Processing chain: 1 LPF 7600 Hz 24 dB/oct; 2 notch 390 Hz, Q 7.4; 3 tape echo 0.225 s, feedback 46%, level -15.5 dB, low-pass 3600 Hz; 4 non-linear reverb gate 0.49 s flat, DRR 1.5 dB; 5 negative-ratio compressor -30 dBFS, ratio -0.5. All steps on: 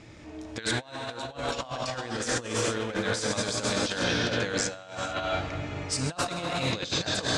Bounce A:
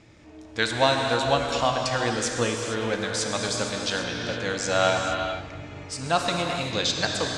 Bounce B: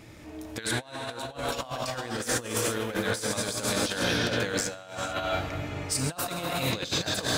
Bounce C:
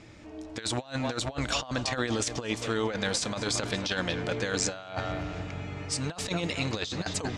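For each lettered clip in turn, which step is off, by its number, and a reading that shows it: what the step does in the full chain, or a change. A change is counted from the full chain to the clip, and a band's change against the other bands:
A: 5, crest factor change +3.5 dB; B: 1, 8 kHz band +1.5 dB; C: 4, 125 Hz band +2.5 dB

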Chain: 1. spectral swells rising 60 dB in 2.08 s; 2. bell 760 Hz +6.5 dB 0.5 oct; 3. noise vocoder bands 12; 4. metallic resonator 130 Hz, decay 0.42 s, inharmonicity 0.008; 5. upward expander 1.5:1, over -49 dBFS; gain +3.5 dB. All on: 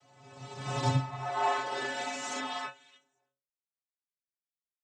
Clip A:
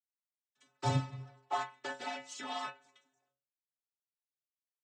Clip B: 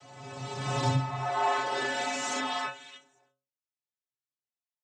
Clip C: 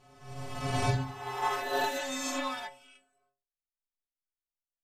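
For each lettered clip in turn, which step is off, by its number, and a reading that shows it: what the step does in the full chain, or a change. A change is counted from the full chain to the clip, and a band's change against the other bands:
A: 1, loudness change -5.5 LU; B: 5, loudness change +2.5 LU; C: 3, 125 Hz band -2.0 dB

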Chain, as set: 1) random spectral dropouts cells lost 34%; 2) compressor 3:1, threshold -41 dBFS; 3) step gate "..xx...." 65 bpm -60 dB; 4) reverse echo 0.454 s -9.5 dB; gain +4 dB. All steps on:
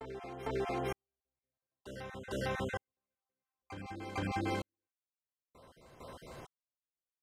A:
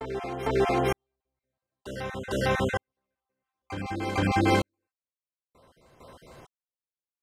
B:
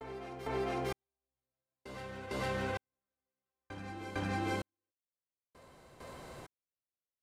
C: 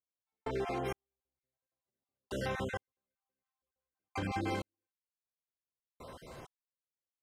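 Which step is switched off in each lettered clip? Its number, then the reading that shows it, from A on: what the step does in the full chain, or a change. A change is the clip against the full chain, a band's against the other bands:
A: 2, mean gain reduction 7.0 dB; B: 1, momentary loudness spread change +1 LU; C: 4, loudness change +1.0 LU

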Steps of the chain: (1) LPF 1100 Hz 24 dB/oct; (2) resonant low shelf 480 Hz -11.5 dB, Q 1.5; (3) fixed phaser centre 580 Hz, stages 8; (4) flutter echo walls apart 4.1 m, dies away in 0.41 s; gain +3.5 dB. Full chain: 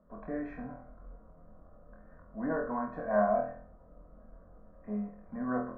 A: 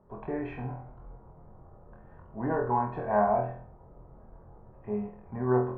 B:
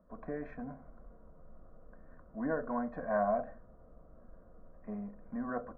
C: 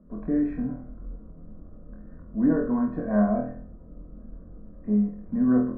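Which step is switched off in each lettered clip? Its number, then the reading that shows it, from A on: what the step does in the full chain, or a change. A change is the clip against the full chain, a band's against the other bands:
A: 3, 125 Hz band +9.0 dB; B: 4, momentary loudness spread change -6 LU; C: 2, 250 Hz band +13.5 dB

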